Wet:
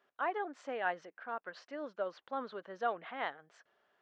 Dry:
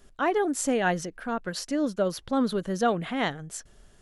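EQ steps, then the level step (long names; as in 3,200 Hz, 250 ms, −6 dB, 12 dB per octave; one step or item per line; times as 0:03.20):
high-pass filter 810 Hz 12 dB per octave
high-frequency loss of the air 98 metres
head-to-tape spacing loss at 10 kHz 34 dB
−1.5 dB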